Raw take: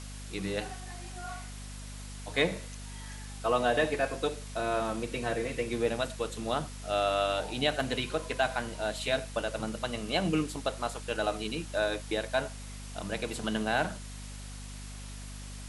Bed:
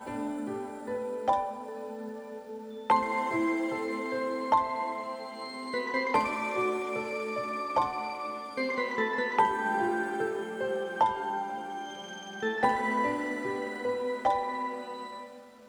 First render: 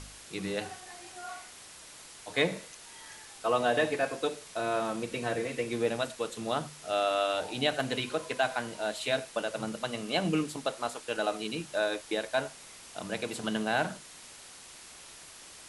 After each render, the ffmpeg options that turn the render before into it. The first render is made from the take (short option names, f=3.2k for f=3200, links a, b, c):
-af "bandreject=f=50:t=h:w=4,bandreject=f=100:t=h:w=4,bandreject=f=150:t=h:w=4,bandreject=f=200:t=h:w=4,bandreject=f=250:t=h:w=4"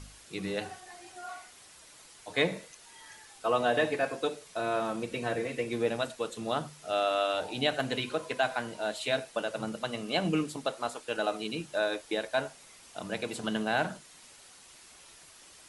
-af "afftdn=nr=6:nf=-50"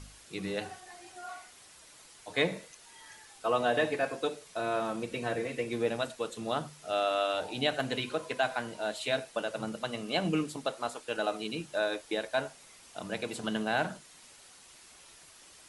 -af "volume=-1dB"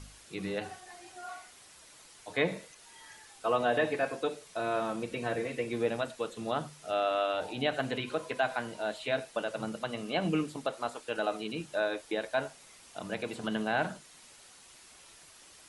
-filter_complex "[0:a]acrossover=split=3300[a][b];[b]acompressor=threshold=-49dB:ratio=4:attack=1:release=60[c];[a][c]amix=inputs=2:normalize=0"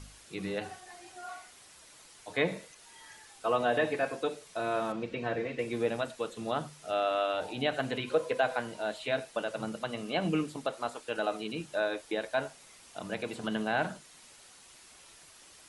-filter_complex "[0:a]asettb=1/sr,asplit=3[a][b][c];[a]atrim=end=4.924[d];[b]atrim=start=4.92:end=5.59,asetpts=PTS-STARTPTS,afade=t=in:d=0.004:c=qsin,afade=t=out:st=0.666:d=0.004:c=qsin,lowpass=4.1k[e];[c]atrim=start=5.586[f];[d][e]acrossfade=d=0.004:c1=hsin:c2=qsin[g];[g][f]acrossfade=d=0.004:c1=qsin:c2=hsin,asettb=1/sr,asplit=3[h][i][j];[h]atrim=end=8.104[k];[i]atrim=start=8.1:end=8.6,asetpts=PTS-STARTPTS,afade=t=in:d=0.004:c=qsin,afade=t=out:st=0.496:d=0.004:c=qsin,equalizer=f=500:w=4.3:g=11[l];[j]atrim=start=8.596[m];[k][l]acrossfade=d=0.004:c1=hsin:c2=qsin[n];[n][m]acrossfade=d=0.004:c1=qsin:c2=hsin"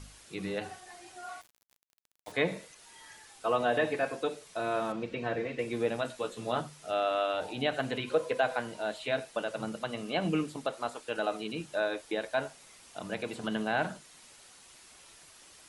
-filter_complex "[0:a]asettb=1/sr,asplit=3[a][b][c];[a]atrim=end=1.414[d];[b]atrim=start=1.41:end=2.32,asetpts=PTS-STARTPTS,afade=t=in:d=0.004:c=qsin,afade=t=out:st=0.906:d=0.004:c=qsin,aeval=exprs='val(0)*gte(abs(val(0)),0.00562)':c=same[e];[c]atrim=start=2.316[f];[d][e]acrossfade=d=0.004:c1=hsin:c2=qsin[g];[g][f]acrossfade=d=0.004:c1=qsin:c2=hsin,asettb=1/sr,asplit=3[h][i][j];[h]atrim=end=6.034[k];[i]atrim=start=6.03:end=6.61,asetpts=PTS-STARTPTS,afade=t=in:d=0.004:c=qsin,afade=t=out:st=0.576:d=0.004:c=qsin,asplit=2[l][m];[m]adelay=16,volume=-5dB[n];[l][n]amix=inputs=2:normalize=0,atrim=end_sample=25578[o];[j]atrim=start=6.606[p];[k][o]acrossfade=d=0.004:c1=hsin:c2=qsin[q];[q][p]acrossfade=d=0.004:c1=qsin:c2=hsin"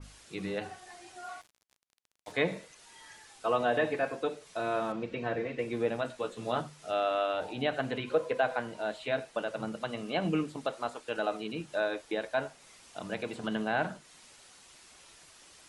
-af "lowpass=10k,adynamicequalizer=threshold=0.00398:dfrequency=2700:dqfactor=0.7:tfrequency=2700:tqfactor=0.7:attack=5:release=100:ratio=0.375:range=2.5:mode=cutabove:tftype=highshelf"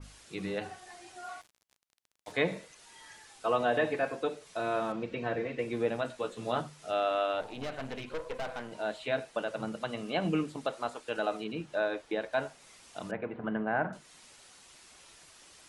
-filter_complex "[0:a]asettb=1/sr,asplit=3[a][b][c];[a]atrim=end=7.414[d];[b]atrim=start=7.41:end=8.72,asetpts=PTS-STARTPTS,afade=t=in:d=0.004:c=qsin,afade=t=out:st=1.306:d=0.004:c=qsin,aeval=exprs='(tanh(44.7*val(0)+0.75)-tanh(0.75))/44.7':c=same[e];[c]atrim=start=8.716[f];[d][e]acrossfade=d=0.004:c1=hsin:c2=qsin[g];[g][f]acrossfade=d=0.004:c1=qsin:c2=hsin,asettb=1/sr,asplit=3[h][i][j];[h]atrim=end=11.444[k];[i]atrim=start=11.44:end=12.33,asetpts=PTS-STARTPTS,afade=t=in:d=0.004:c=qsin,afade=t=out:st=0.886:d=0.004:c=qsin,aemphasis=mode=reproduction:type=cd[l];[j]atrim=start=12.326[m];[k][l]acrossfade=d=0.004:c1=hsin:c2=qsin[n];[n][m]acrossfade=d=0.004:c1=qsin:c2=hsin,asettb=1/sr,asplit=3[o][p][q];[o]atrim=end=13.114[r];[p]atrim=start=13.11:end=13.93,asetpts=PTS-STARTPTS,afade=t=in:d=0.004:c=qsin,afade=t=out:st=0.816:d=0.004:c=qsin,lowpass=f=2k:w=0.5412,lowpass=f=2k:w=1.3066[s];[q]atrim=start=13.926[t];[r][s]acrossfade=d=0.004:c1=hsin:c2=qsin[u];[u][t]acrossfade=d=0.004:c1=qsin:c2=hsin"